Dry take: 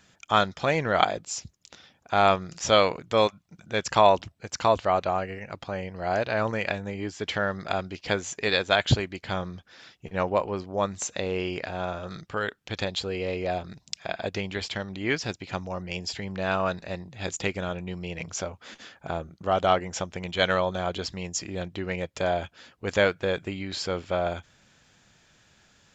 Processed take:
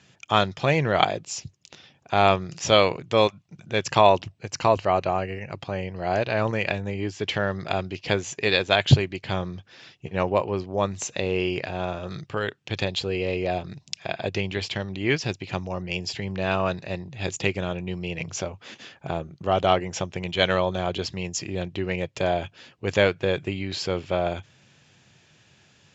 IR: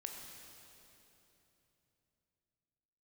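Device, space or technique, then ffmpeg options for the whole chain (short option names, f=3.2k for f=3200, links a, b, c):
car door speaker: -filter_complex "[0:a]highpass=84,equalizer=f=98:t=q:w=4:g=6,equalizer=f=140:t=q:w=4:g=8,equalizer=f=370:t=q:w=4:g=4,equalizer=f=1.4k:t=q:w=4:g=-4,equalizer=f=2.7k:t=q:w=4:g=5,lowpass=f=7.5k:w=0.5412,lowpass=f=7.5k:w=1.3066,asettb=1/sr,asplit=3[a][b][c];[a]atrim=end=4.524[d];[b]atrim=start=4.52:end=5.59,asetpts=PTS-STARTPTS,afade=t=in:d=0.004:c=qsin,afade=t=out:st=1.066:d=0.004:c=qsin,bandreject=f=3.5k:w=6.5[e];[c]atrim=start=5.586[f];[d][e]acrossfade=d=0.004:c1=hsin:c2=qsin[g];[g][f]acrossfade=d=0.004:c1=qsin:c2=hsin,volume=1.5dB"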